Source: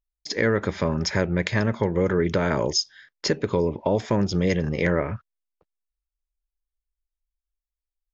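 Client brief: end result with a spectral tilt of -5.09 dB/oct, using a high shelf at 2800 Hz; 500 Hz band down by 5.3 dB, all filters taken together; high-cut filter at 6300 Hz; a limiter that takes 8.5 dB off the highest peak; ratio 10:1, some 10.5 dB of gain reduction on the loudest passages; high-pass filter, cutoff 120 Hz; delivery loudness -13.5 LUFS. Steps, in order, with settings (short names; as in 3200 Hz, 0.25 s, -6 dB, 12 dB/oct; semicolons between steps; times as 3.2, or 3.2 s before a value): HPF 120 Hz; LPF 6300 Hz; bell 500 Hz -6 dB; high shelf 2800 Hz -8.5 dB; compressor 10:1, threshold -31 dBFS; gain +24.5 dB; limiter -2 dBFS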